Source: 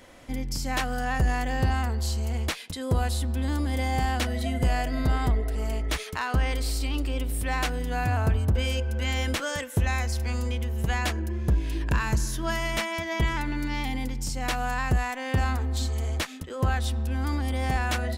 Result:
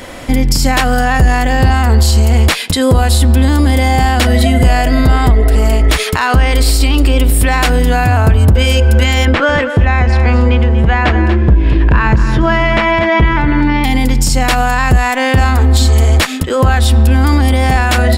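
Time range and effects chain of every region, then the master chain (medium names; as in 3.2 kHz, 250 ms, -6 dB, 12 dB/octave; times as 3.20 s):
9.25–13.84 s: low-pass 2.3 kHz + delay 238 ms -12 dB
whole clip: band-stop 6.1 kHz, Q 13; compression 2.5:1, threshold -26 dBFS; loudness maximiser +22.5 dB; trim -1 dB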